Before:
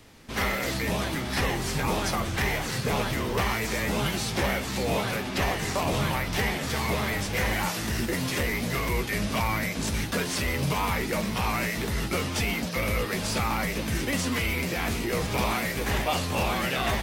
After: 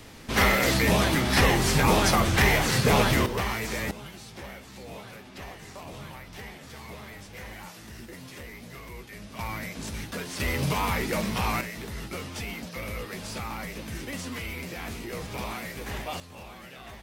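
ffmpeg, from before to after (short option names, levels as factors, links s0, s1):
-af "asetnsamples=n=441:p=0,asendcmd='3.26 volume volume -2.5dB;3.91 volume volume -15dB;9.39 volume volume -7dB;10.4 volume volume 0dB;11.61 volume volume -8dB;16.2 volume volume -18dB',volume=2"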